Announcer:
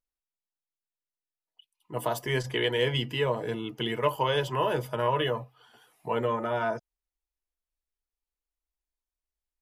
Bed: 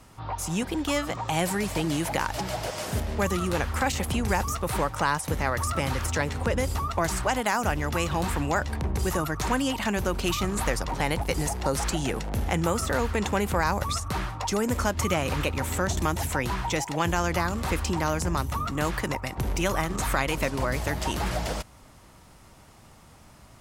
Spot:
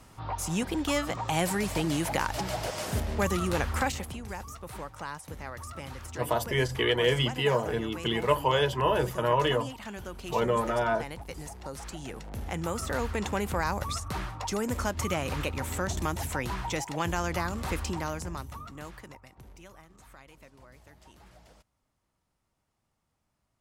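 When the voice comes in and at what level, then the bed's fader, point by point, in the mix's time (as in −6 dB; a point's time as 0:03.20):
4.25 s, +1.5 dB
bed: 0:03.81 −1.5 dB
0:04.19 −13.5 dB
0:11.84 −13.5 dB
0:12.98 −4.5 dB
0:17.83 −4.5 dB
0:19.85 −27 dB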